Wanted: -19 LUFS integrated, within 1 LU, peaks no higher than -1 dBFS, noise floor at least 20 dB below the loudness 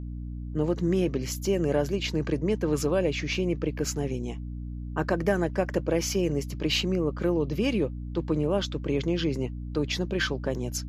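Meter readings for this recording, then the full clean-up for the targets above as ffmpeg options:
hum 60 Hz; highest harmonic 300 Hz; hum level -33 dBFS; loudness -28.0 LUFS; peak level -11.5 dBFS; loudness target -19.0 LUFS
-> -af "bandreject=f=60:t=h:w=4,bandreject=f=120:t=h:w=4,bandreject=f=180:t=h:w=4,bandreject=f=240:t=h:w=4,bandreject=f=300:t=h:w=4"
-af "volume=2.82"

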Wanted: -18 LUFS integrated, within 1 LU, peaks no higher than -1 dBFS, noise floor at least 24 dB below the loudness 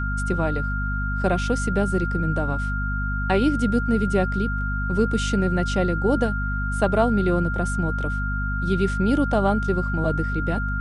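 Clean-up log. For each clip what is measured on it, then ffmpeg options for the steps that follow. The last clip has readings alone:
hum 50 Hz; highest harmonic 250 Hz; hum level -24 dBFS; steady tone 1.4 kHz; tone level -28 dBFS; loudness -23.0 LUFS; peak level -7.0 dBFS; loudness target -18.0 LUFS
-> -af "bandreject=f=50:t=h:w=6,bandreject=f=100:t=h:w=6,bandreject=f=150:t=h:w=6,bandreject=f=200:t=h:w=6,bandreject=f=250:t=h:w=6"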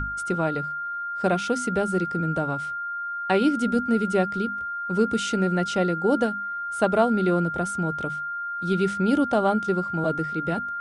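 hum not found; steady tone 1.4 kHz; tone level -28 dBFS
-> -af "bandreject=f=1400:w=30"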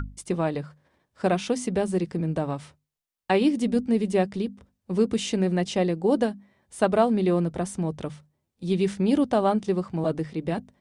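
steady tone not found; loudness -25.5 LUFS; peak level -9.0 dBFS; loudness target -18.0 LUFS
-> -af "volume=2.37"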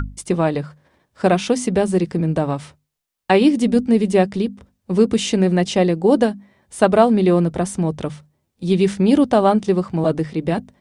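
loudness -18.0 LUFS; peak level -1.5 dBFS; noise floor -74 dBFS

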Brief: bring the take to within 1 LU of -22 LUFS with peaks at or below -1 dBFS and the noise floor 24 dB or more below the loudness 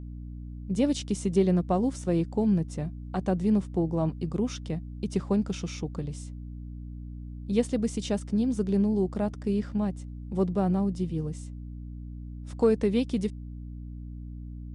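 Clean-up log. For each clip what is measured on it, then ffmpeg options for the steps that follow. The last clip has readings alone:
hum 60 Hz; highest harmonic 300 Hz; hum level -37 dBFS; loudness -28.0 LUFS; peak level -12.0 dBFS; loudness target -22.0 LUFS
-> -af "bandreject=f=60:t=h:w=4,bandreject=f=120:t=h:w=4,bandreject=f=180:t=h:w=4,bandreject=f=240:t=h:w=4,bandreject=f=300:t=h:w=4"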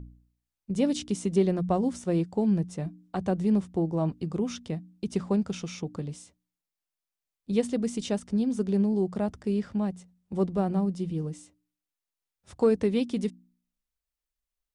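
hum not found; loudness -28.5 LUFS; peak level -12.5 dBFS; loudness target -22.0 LUFS
-> -af "volume=2.11"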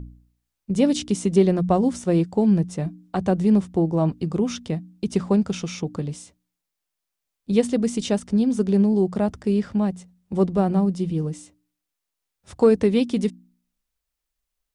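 loudness -22.0 LUFS; peak level -6.0 dBFS; noise floor -83 dBFS

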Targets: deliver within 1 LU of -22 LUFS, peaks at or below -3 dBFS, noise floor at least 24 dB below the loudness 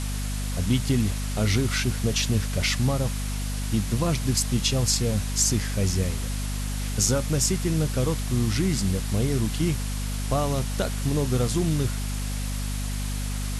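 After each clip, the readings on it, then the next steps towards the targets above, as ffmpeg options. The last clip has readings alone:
hum 50 Hz; highest harmonic 250 Hz; hum level -26 dBFS; noise floor -29 dBFS; noise floor target -50 dBFS; loudness -25.5 LUFS; peak level -8.5 dBFS; loudness target -22.0 LUFS
-> -af "bandreject=f=50:t=h:w=6,bandreject=f=100:t=h:w=6,bandreject=f=150:t=h:w=6,bandreject=f=200:t=h:w=6,bandreject=f=250:t=h:w=6"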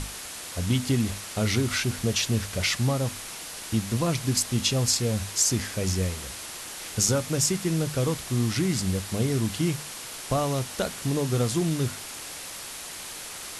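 hum not found; noise floor -39 dBFS; noise floor target -51 dBFS
-> -af "afftdn=nr=12:nf=-39"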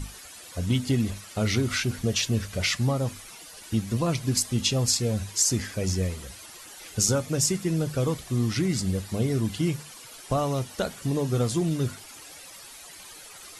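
noise floor -45 dBFS; noise floor target -51 dBFS
-> -af "afftdn=nr=6:nf=-45"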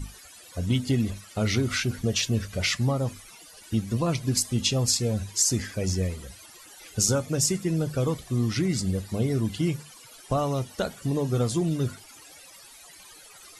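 noise floor -49 dBFS; noise floor target -51 dBFS
-> -af "afftdn=nr=6:nf=-49"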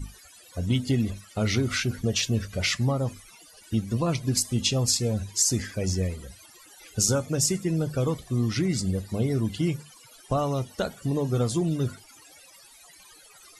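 noise floor -52 dBFS; loudness -26.5 LUFS; peak level -9.5 dBFS; loudness target -22.0 LUFS
-> -af "volume=1.68"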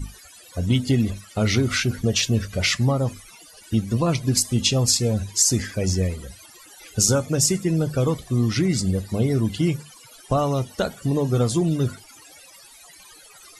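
loudness -22.0 LUFS; peak level -5.0 dBFS; noise floor -48 dBFS

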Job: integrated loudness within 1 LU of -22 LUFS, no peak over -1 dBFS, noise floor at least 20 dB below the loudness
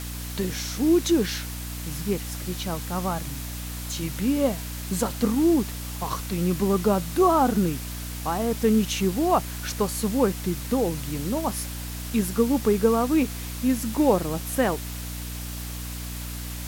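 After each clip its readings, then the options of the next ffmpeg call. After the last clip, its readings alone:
hum 60 Hz; highest harmonic 300 Hz; hum level -32 dBFS; noise floor -34 dBFS; noise floor target -46 dBFS; loudness -25.5 LUFS; peak level -8.0 dBFS; loudness target -22.0 LUFS
-> -af "bandreject=f=60:t=h:w=6,bandreject=f=120:t=h:w=6,bandreject=f=180:t=h:w=6,bandreject=f=240:t=h:w=6,bandreject=f=300:t=h:w=6"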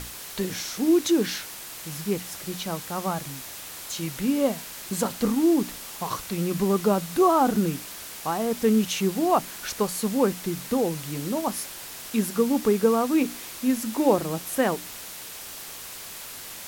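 hum not found; noise floor -39 dBFS; noise floor target -46 dBFS
-> -af "afftdn=nr=7:nf=-39"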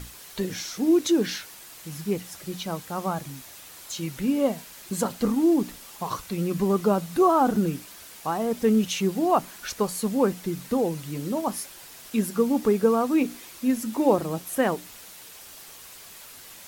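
noise floor -45 dBFS; noise floor target -46 dBFS
-> -af "afftdn=nr=6:nf=-45"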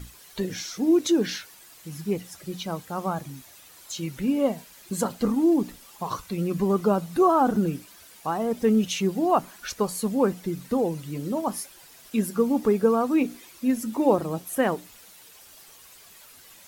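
noise floor -50 dBFS; loudness -25.5 LUFS; peak level -8.0 dBFS; loudness target -22.0 LUFS
-> -af "volume=1.5"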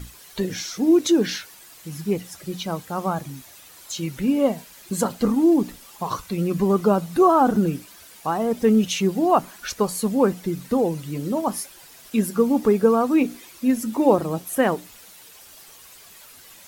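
loudness -22.0 LUFS; peak level -4.5 dBFS; noise floor -47 dBFS

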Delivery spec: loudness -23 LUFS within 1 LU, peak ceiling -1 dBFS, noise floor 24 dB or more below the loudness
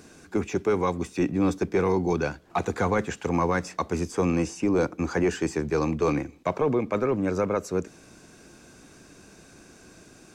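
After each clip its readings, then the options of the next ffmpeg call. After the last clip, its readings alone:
loudness -26.5 LUFS; peak level -14.5 dBFS; loudness target -23.0 LUFS
-> -af "volume=1.5"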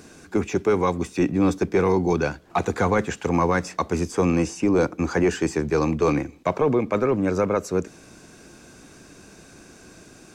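loudness -23.0 LUFS; peak level -11.0 dBFS; noise floor -49 dBFS

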